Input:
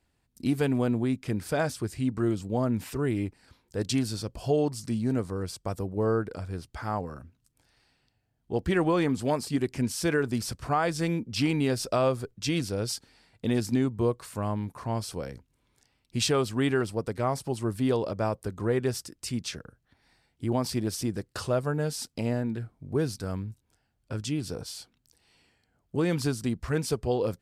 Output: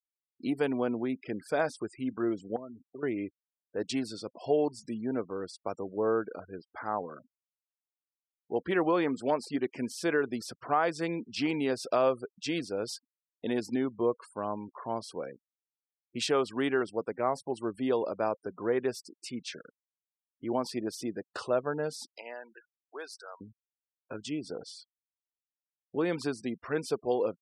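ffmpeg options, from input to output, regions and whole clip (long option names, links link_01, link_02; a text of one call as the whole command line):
ffmpeg -i in.wav -filter_complex "[0:a]asettb=1/sr,asplit=3[link_01][link_02][link_03];[link_01]atrim=end=2.564[link_04];[link_02]atrim=start=2.56:end=3.03,asetpts=PTS-STARTPTS,afade=type=in:duration=0.004:curve=qsin,afade=type=out:start_time=0.466:duration=0.004:curve=qsin,agate=range=-19dB:threshold=-37dB:ratio=16:release=100:detection=peak,aecho=1:1:7.5:0.69,atrim=end_sample=20727,acompressor=threshold=-37dB:ratio=5:attack=3.2:release=140:knee=1:detection=peak[link_05];[link_03]atrim=start=3.026[link_06];[link_04][link_05]acrossfade=duration=0.004:curve1=hsin:curve2=qsin[link_07];[link_07][link_06]acrossfade=duration=0.004:curve1=qsin:curve2=hsin,asettb=1/sr,asplit=3[link_08][link_09][link_10];[link_08]atrim=end=22.164[link_11];[link_09]atrim=start=22.16:end=23.41,asetpts=PTS-STARTPTS,afade=type=in:duration=0.004:curve=qsin,afade=type=out:start_time=1.246:duration=0.004:curve=qsin,highpass=930,highshelf=frequency=7900:gain=3[link_12];[link_10]atrim=start=23.406[link_13];[link_11][link_12]acrossfade=duration=0.004:curve1=hsin:curve2=qsin[link_14];[link_14][link_13]acrossfade=duration=0.004:curve1=qsin:curve2=hsin,highpass=310,afftfilt=real='re*gte(hypot(re,im),0.00794)':imag='im*gte(hypot(re,im),0.00794)':win_size=1024:overlap=0.75,highshelf=frequency=4700:gain=-11" out.wav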